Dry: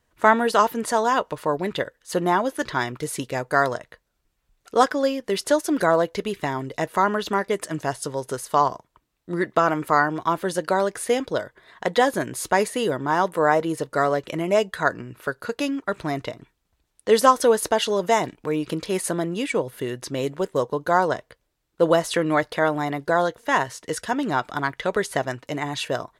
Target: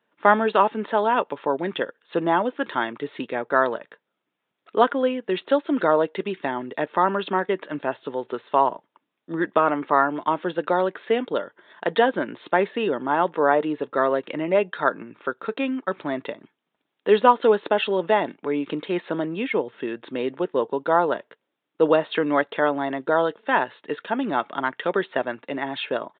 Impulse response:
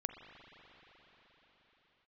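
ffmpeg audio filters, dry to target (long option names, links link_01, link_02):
-af "highpass=frequency=200:width=0.5412,highpass=frequency=200:width=1.3066,asetrate=41625,aresample=44100,atempo=1.05946,aresample=8000,aresample=44100"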